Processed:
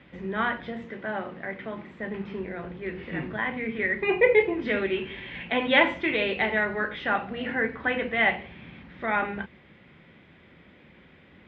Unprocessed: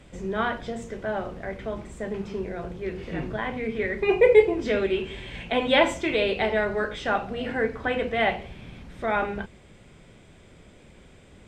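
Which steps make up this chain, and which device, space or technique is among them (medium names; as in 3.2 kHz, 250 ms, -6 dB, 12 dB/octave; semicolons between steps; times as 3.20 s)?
guitar cabinet (cabinet simulation 100–3500 Hz, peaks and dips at 110 Hz -7 dB, 430 Hz -5 dB, 650 Hz -5 dB, 1.9 kHz +6 dB); 0.85–2.00 s: high-pass 120 Hz 12 dB/octave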